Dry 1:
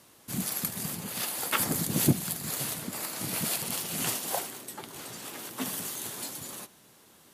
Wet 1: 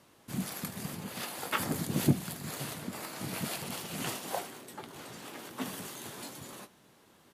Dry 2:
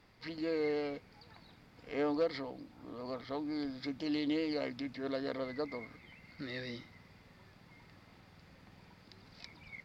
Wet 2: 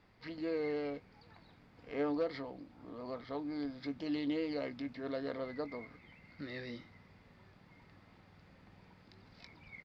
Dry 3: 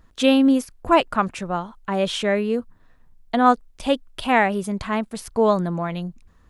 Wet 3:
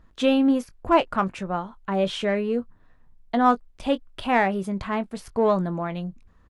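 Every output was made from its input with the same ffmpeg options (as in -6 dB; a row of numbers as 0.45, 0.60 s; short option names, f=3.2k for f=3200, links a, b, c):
-filter_complex "[0:a]highshelf=f=4.8k:g=-10.5,asplit=2[a][b];[b]asoftclip=type=tanh:threshold=-18dB,volume=-9.5dB[c];[a][c]amix=inputs=2:normalize=0,asplit=2[d][e];[e]adelay=21,volume=-13dB[f];[d][f]amix=inputs=2:normalize=0,volume=-4dB"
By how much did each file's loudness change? -5.5, -2.0, -3.0 LU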